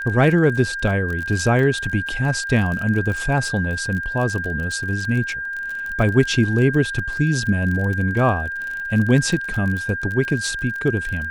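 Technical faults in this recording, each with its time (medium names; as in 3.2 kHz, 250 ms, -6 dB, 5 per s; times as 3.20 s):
crackle 29 per s -25 dBFS
whine 1.6 kHz -25 dBFS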